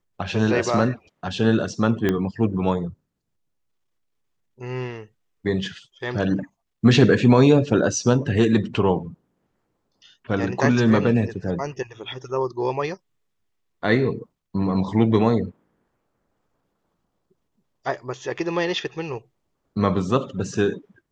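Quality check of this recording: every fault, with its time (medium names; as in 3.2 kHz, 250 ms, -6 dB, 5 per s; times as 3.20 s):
2.09 s: pop -9 dBFS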